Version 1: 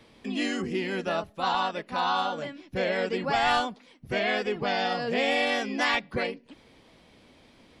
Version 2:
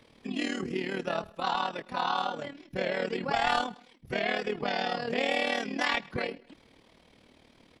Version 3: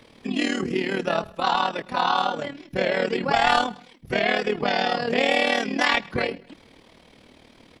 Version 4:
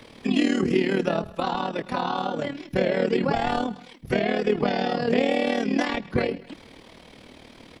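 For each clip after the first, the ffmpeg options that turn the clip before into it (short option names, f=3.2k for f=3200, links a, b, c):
-af "aecho=1:1:112|224:0.0708|0.0255,tremolo=f=38:d=0.71"
-af "bandreject=f=45.62:t=h:w=4,bandreject=f=91.24:t=h:w=4,bandreject=f=136.86:t=h:w=4,bandreject=f=182.48:t=h:w=4,volume=7.5dB"
-filter_complex "[0:a]acrossover=split=500[a][b];[b]acompressor=threshold=-33dB:ratio=6[c];[a][c]amix=inputs=2:normalize=0,volume=4.5dB"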